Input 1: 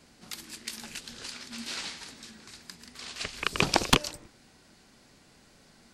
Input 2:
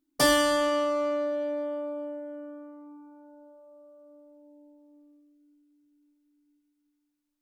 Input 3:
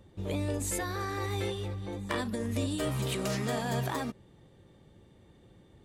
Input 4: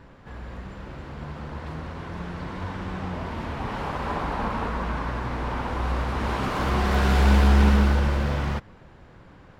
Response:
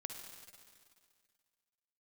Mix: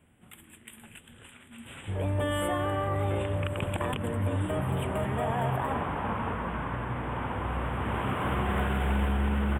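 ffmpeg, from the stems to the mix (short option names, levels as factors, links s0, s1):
-filter_complex "[0:a]volume=0.447[s0];[1:a]acrossover=split=6100[s1][s2];[s2]acompressor=threshold=0.00562:ratio=4:attack=1:release=60[s3];[s1][s3]amix=inputs=2:normalize=0,adelay=2000,volume=0.422[s4];[2:a]equalizer=f=820:t=o:w=1.8:g=12.5,adelay=1700,volume=0.447[s5];[3:a]highpass=f=200:p=1,adelay=1650,volume=0.668[s6];[s0][s4][s5][s6]amix=inputs=4:normalize=0,asuperstop=centerf=5200:order=12:qfactor=1.2,equalizer=f=96:w=1.1:g=12,alimiter=limit=0.112:level=0:latency=1:release=71"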